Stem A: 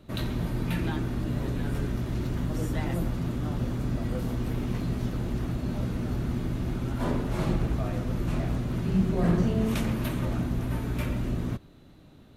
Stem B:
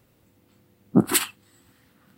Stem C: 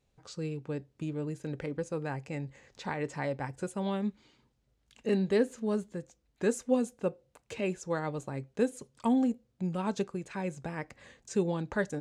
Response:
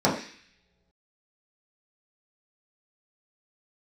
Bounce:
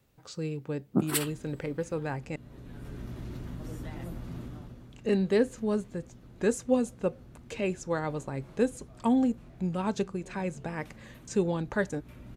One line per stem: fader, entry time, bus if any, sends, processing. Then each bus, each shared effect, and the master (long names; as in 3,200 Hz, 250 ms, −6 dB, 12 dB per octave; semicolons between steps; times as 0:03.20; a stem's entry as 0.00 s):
−6.5 dB, 1.10 s, no send, downward compressor 2.5 to 1, threshold −30 dBFS, peak gain reduction 8.5 dB; automatic ducking −12 dB, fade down 0.50 s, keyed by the third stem
−8.5 dB, 0.00 s, no send, no processing
+2.0 dB, 0.00 s, muted 0:02.36–0:04.92, no send, no processing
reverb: not used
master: no processing